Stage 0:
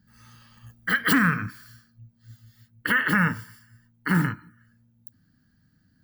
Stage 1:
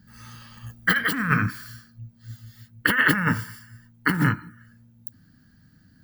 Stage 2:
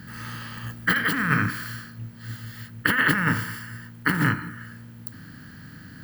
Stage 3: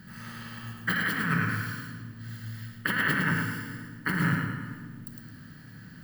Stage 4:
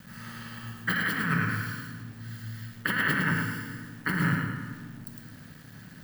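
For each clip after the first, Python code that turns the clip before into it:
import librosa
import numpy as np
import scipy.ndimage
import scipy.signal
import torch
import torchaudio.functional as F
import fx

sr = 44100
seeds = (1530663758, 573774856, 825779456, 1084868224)

y1 = fx.over_compress(x, sr, threshold_db=-24.0, ratio=-0.5)
y1 = y1 * 10.0 ** (4.5 / 20.0)
y2 = fx.bin_compress(y1, sr, power=0.6)
y2 = y2 * 10.0 ** (-3.5 / 20.0)
y3 = fx.echo_feedback(y2, sr, ms=108, feedback_pct=38, wet_db=-5)
y3 = fx.room_shoebox(y3, sr, seeds[0], volume_m3=1700.0, walls='mixed', distance_m=1.1)
y3 = y3 * 10.0 ** (-7.5 / 20.0)
y4 = np.where(np.abs(y3) >= 10.0 ** (-49.0 / 20.0), y3, 0.0)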